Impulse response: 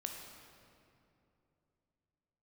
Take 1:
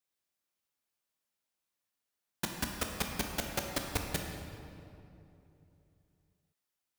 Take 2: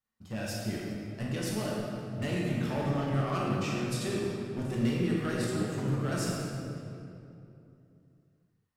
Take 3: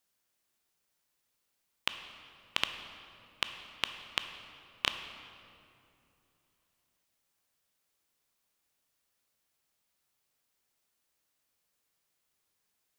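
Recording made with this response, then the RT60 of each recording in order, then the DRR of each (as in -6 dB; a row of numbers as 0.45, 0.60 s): 1; 2.7, 2.8, 2.9 s; 2.0, -5.0, 7.5 dB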